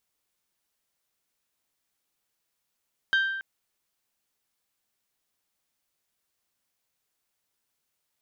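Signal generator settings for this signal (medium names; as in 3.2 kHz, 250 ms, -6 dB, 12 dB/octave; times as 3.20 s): glass hit bell, length 0.28 s, lowest mode 1.57 kHz, decay 1.14 s, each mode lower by 8.5 dB, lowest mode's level -18.5 dB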